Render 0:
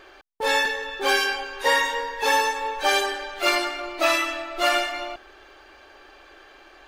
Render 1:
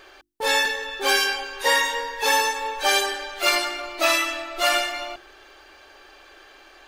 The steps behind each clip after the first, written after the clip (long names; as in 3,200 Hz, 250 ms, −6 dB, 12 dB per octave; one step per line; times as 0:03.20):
high-shelf EQ 3,500 Hz +7.5 dB
mains-hum notches 50/100/150/200/250/300/350 Hz
level −1 dB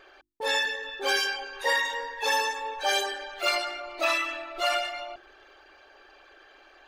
spectral envelope exaggerated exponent 1.5
level −5.5 dB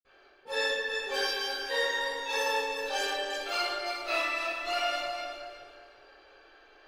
feedback delay that plays each chunk backwards 184 ms, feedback 49%, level −4 dB
convolution reverb RT60 0.95 s, pre-delay 46 ms
level −5.5 dB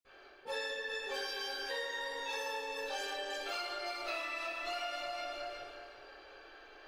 downward compressor 6 to 1, threshold −39 dBFS, peak gain reduction 13 dB
level +2 dB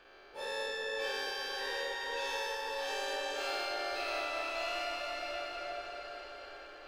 every bin's largest magnitude spread in time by 240 ms
echo whose low-pass opens from repeat to repeat 214 ms, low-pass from 750 Hz, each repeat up 1 octave, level −3 dB
level −4.5 dB